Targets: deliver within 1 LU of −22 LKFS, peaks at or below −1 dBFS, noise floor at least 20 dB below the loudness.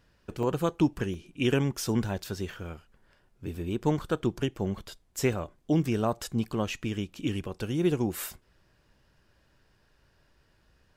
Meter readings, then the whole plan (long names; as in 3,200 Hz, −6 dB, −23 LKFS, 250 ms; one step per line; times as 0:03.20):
number of dropouts 4; longest dropout 2.3 ms; integrated loudness −30.5 LKFS; sample peak −12.0 dBFS; target loudness −22.0 LKFS
→ repair the gap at 0:00.43/0:01.14/0:03.55/0:05.33, 2.3 ms
level +8.5 dB